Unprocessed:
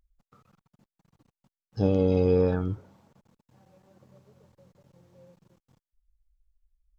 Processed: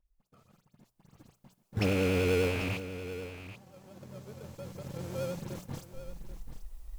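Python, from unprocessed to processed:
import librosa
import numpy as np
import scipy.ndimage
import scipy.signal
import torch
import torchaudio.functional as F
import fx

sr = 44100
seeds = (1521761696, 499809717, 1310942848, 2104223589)

p1 = fx.rattle_buzz(x, sr, strikes_db=-31.0, level_db=-17.0)
p2 = fx.recorder_agc(p1, sr, target_db=-19.0, rise_db_per_s=11.0, max_gain_db=30)
p3 = fx.high_shelf(p2, sr, hz=4600.0, db=9.0)
p4 = fx.hum_notches(p3, sr, base_hz=60, count=3)
p5 = fx.dispersion(p4, sr, late='highs', ms=66.0, hz=2700.0)
p6 = fx.sample_hold(p5, sr, seeds[0], rate_hz=1900.0, jitter_pct=0)
p7 = p5 + (p6 * librosa.db_to_amplitude(-4.0))
p8 = fx.vibrato(p7, sr, rate_hz=10.0, depth_cents=54.0)
p9 = p8 + 10.0 ** (-12.5 / 20.0) * np.pad(p8, (int(786 * sr / 1000.0), 0))[:len(p8)]
y = p9 * librosa.db_to_amplitude(-9.0)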